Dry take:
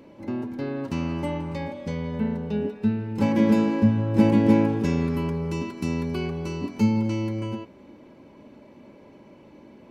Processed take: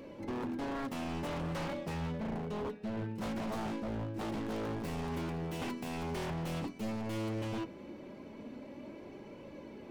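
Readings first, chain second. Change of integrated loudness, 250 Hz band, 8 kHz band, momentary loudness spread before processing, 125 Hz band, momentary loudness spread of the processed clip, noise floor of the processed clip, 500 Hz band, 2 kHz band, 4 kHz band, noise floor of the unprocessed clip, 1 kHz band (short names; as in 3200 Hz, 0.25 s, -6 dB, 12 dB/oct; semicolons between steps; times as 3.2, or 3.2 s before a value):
-14.0 dB, -15.0 dB, n/a, 12 LU, -13.0 dB, 11 LU, -50 dBFS, -10.5 dB, -7.5 dB, -5.5 dB, -50 dBFS, -6.5 dB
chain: tracing distortion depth 0.25 ms; bell 940 Hz -3.5 dB 0.35 oct; notches 60/120/180/240 Hz; reverse; compressor 12:1, threshold -31 dBFS, peak gain reduction 19.5 dB; reverse; flange 0.21 Hz, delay 1.7 ms, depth 5.7 ms, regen +63%; wavefolder -37.5 dBFS; gain +5.5 dB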